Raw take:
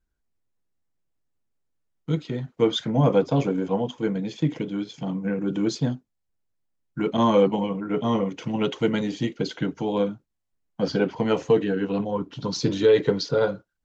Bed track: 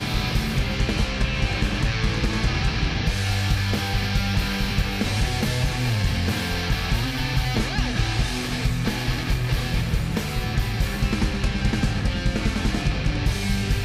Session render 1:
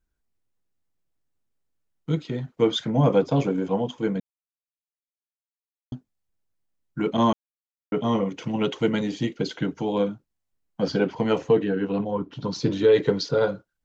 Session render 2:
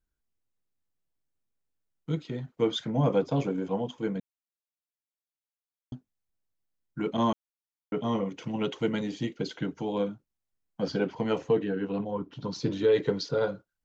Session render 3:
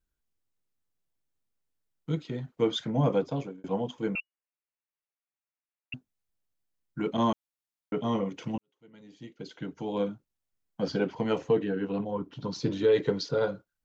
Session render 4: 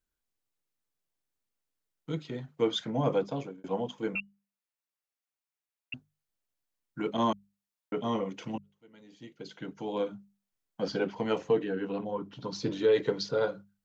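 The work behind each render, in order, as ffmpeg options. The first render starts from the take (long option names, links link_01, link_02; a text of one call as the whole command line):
ffmpeg -i in.wav -filter_complex "[0:a]asettb=1/sr,asplit=3[link_01][link_02][link_03];[link_01]atrim=end=11.384[link_04];[link_02]atrim=start=11.38:end=12.92,asetpts=PTS-STARTPTS,afade=type=in:duration=0.004:curve=qsin,afade=type=out:start_time=1.536:duration=0.004:curve=qsin,highshelf=frequency=4600:gain=-9[link_05];[link_03]atrim=start=12.916[link_06];[link_04][link_05]acrossfade=duration=0.004:curve1=hsin:curve2=qsin[link_07];[link_07][link_06]acrossfade=duration=0.004:curve1=qsin:curve2=hsin,asplit=5[link_08][link_09][link_10][link_11][link_12];[link_08]atrim=end=4.2,asetpts=PTS-STARTPTS,afade=type=out:start_time=4.196:duration=0.004:curve=hsin[link_13];[link_09]atrim=start=4.2:end=5.92,asetpts=PTS-STARTPTS,volume=0[link_14];[link_10]atrim=start=5.92:end=7.33,asetpts=PTS-STARTPTS,afade=type=in:duration=0.004:curve=hsin,afade=type=out:start_time=1.406:duration=0.004:curve=hsin[link_15];[link_11]atrim=start=7.33:end=7.92,asetpts=PTS-STARTPTS,volume=0[link_16];[link_12]atrim=start=7.92,asetpts=PTS-STARTPTS,afade=type=in:duration=0.004:curve=hsin[link_17];[link_13][link_14][link_15][link_16][link_17]concat=n=5:v=0:a=1" out.wav
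ffmpeg -i in.wav -af "volume=-5.5dB" out.wav
ffmpeg -i in.wav -filter_complex "[0:a]asettb=1/sr,asplit=3[link_01][link_02][link_03];[link_01]atrim=end=4.154[link_04];[link_02]atrim=start=4.15:end=5.94,asetpts=PTS-STARTPTS,afade=type=in:duration=0.004:curve=qsin,afade=type=out:start_time=1.786:duration=0.004:curve=qsin,lowpass=frequency=2500:width_type=q:width=0.5098,lowpass=frequency=2500:width_type=q:width=0.6013,lowpass=frequency=2500:width_type=q:width=0.9,lowpass=frequency=2500:width_type=q:width=2.563,afreqshift=-2900[link_05];[link_03]atrim=start=5.936[link_06];[link_04][link_05]acrossfade=duration=0.004:curve1=hsin:curve2=qsin[link_07];[link_07][link_06]acrossfade=duration=0.004:curve1=qsin:curve2=hsin,asplit=3[link_08][link_09][link_10];[link_08]atrim=end=3.64,asetpts=PTS-STARTPTS,afade=type=out:start_time=2.93:duration=0.71:curve=qsin[link_11];[link_09]atrim=start=3.64:end=8.58,asetpts=PTS-STARTPTS,afade=type=in:duration=0.004:curve=hsin,afade=type=out:start_time=4.936:duration=0.004:curve=hsin[link_12];[link_10]atrim=start=8.58,asetpts=PTS-STARTPTS,afade=type=in:duration=1.46:curve=qua[link_13];[link_11][link_12][link_13]concat=n=3:v=0:a=1" out.wav
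ffmpeg -i in.wav -af "lowshelf=frequency=210:gain=-6.5,bandreject=frequency=50:width_type=h:width=6,bandreject=frequency=100:width_type=h:width=6,bandreject=frequency=150:width_type=h:width=6,bandreject=frequency=200:width_type=h:width=6" out.wav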